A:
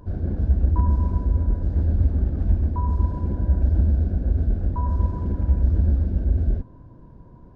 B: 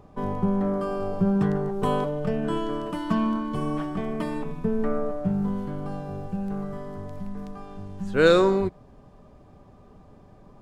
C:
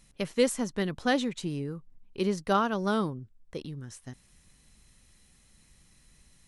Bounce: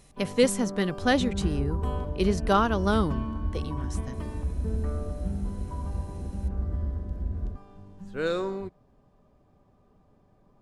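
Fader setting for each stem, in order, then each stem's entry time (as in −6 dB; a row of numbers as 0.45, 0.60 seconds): −11.0, −11.0, +3.0 decibels; 0.95, 0.00, 0.00 seconds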